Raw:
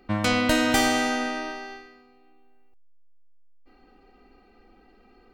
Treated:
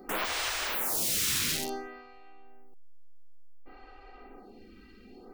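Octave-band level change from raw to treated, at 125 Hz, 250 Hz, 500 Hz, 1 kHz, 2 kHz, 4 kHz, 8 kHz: -11.5, -17.5, -11.5, -10.0, -8.5, -3.0, +3.0 dB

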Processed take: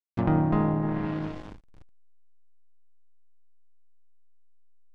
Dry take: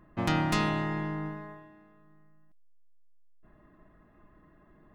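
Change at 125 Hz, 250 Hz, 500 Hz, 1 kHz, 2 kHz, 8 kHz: +5.0 dB, +5.0 dB, +4.0 dB, 0.0 dB, -8.0 dB, under -20 dB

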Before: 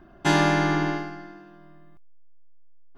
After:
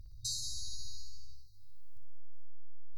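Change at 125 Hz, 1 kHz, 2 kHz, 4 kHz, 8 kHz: -23.0 dB, under -40 dB, under -40 dB, -7.5 dB, -1.0 dB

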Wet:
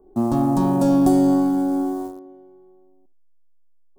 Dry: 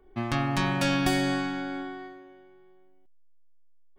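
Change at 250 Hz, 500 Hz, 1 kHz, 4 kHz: +12.0 dB, +9.5 dB, +5.5 dB, under -10 dB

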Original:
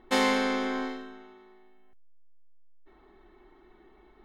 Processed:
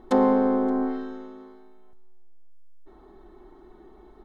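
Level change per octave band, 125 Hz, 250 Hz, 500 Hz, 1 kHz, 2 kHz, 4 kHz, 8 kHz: n/a, +8.0 dB, +7.0 dB, +3.0 dB, -10.5 dB, under -15 dB, under -10 dB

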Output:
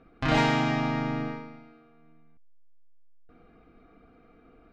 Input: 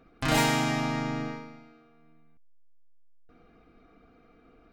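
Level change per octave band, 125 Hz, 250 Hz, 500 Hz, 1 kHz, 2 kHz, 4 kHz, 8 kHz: +2.0 dB, +2.0 dB, +1.5 dB, +1.0 dB, +0.5 dB, -2.5 dB, under -10 dB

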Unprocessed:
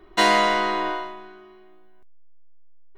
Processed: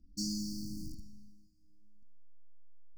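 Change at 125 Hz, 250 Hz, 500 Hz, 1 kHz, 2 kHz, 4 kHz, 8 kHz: n/a, -8.5 dB, under -35 dB, under -40 dB, under -40 dB, -17.0 dB, -7.0 dB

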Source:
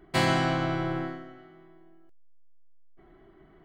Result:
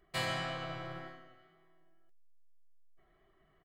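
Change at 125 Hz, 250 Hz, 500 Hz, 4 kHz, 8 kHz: -14.0 dB, -18.0 dB, -12.0 dB, -6.5 dB, n/a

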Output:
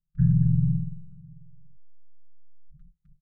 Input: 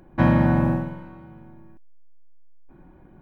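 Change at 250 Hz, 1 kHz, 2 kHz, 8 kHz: -6.5 dB, under -40 dB, under -30 dB, n/a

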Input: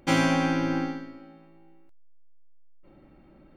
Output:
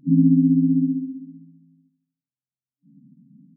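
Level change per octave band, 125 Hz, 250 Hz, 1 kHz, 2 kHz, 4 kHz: +9.0 dB, +9.5 dB, under -40 dB, under -40 dB, under -40 dB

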